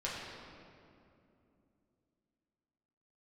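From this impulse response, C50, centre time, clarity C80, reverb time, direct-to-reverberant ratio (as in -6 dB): -0.5 dB, 0.121 s, 1.0 dB, 2.7 s, -7.0 dB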